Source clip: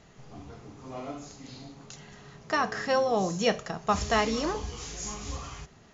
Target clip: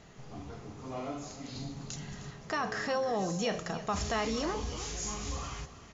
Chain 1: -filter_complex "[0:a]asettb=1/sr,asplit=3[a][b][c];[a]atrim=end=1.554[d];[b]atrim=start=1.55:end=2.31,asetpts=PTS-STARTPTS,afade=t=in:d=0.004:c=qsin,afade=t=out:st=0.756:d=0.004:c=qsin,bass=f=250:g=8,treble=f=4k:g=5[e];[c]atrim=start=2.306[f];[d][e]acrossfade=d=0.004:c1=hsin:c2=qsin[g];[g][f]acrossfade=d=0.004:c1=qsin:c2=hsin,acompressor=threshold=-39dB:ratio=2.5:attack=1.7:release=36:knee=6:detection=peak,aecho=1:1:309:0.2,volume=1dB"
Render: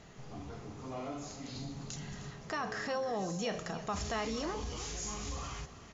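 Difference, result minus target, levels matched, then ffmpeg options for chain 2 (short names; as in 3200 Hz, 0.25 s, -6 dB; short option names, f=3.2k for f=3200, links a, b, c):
compressor: peak gain reduction +4 dB
-filter_complex "[0:a]asettb=1/sr,asplit=3[a][b][c];[a]atrim=end=1.554[d];[b]atrim=start=1.55:end=2.31,asetpts=PTS-STARTPTS,afade=t=in:d=0.004:c=qsin,afade=t=out:st=0.756:d=0.004:c=qsin,bass=f=250:g=8,treble=f=4k:g=5[e];[c]atrim=start=2.306[f];[d][e]acrossfade=d=0.004:c1=hsin:c2=qsin[g];[g][f]acrossfade=d=0.004:c1=qsin:c2=hsin,acompressor=threshold=-32.5dB:ratio=2.5:attack=1.7:release=36:knee=6:detection=peak,aecho=1:1:309:0.2,volume=1dB"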